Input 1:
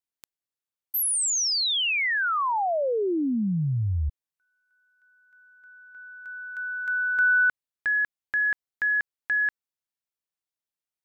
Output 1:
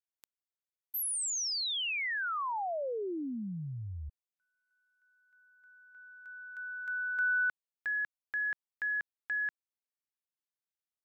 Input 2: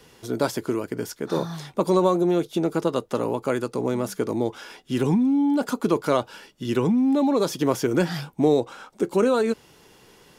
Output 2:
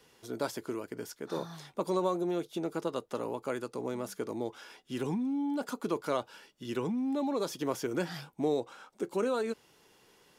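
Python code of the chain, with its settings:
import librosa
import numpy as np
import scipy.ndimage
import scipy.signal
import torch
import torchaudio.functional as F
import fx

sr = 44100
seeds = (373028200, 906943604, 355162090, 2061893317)

y = fx.low_shelf(x, sr, hz=220.0, db=-7.0)
y = F.gain(torch.from_numpy(y), -9.0).numpy()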